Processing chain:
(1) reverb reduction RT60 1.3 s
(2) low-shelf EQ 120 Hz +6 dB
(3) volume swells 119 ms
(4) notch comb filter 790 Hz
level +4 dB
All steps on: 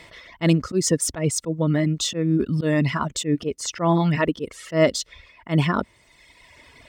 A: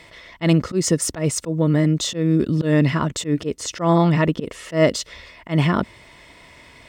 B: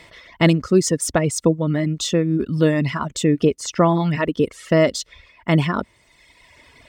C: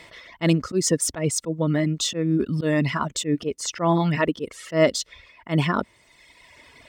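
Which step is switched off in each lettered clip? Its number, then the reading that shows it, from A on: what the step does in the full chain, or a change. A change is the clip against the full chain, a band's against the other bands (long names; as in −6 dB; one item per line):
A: 1, change in momentary loudness spread +2 LU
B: 3, 8 kHz band −3.0 dB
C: 2, 125 Hz band −2.0 dB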